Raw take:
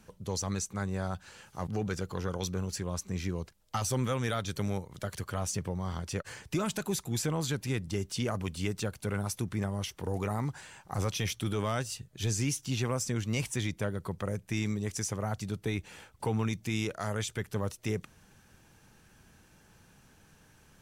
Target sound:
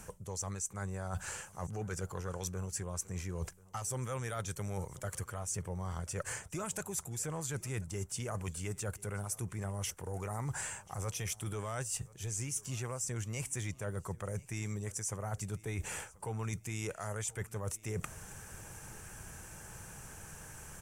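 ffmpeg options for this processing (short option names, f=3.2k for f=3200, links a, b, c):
-af "equalizer=f=250:t=o:w=1:g=-9,equalizer=f=4k:t=o:w=1:g=-12,equalizer=f=8k:t=o:w=1:g=10,areverse,acompressor=threshold=-47dB:ratio=12,areverse,aecho=1:1:1036|2072:0.075|0.0262,volume=11.5dB"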